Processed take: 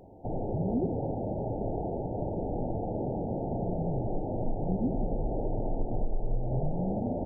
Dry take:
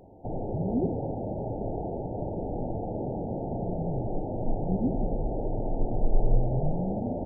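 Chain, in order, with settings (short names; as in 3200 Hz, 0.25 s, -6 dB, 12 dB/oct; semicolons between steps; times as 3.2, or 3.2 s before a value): compressor 6:1, threshold -24 dBFS, peak gain reduction 9.5 dB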